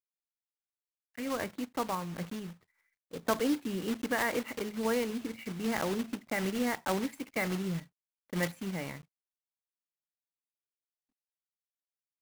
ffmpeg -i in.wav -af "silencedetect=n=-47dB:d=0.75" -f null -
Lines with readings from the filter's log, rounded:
silence_start: 0.00
silence_end: 1.15 | silence_duration: 1.15
silence_start: 9.01
silence_end: 12.21 | silence_duration: 3.20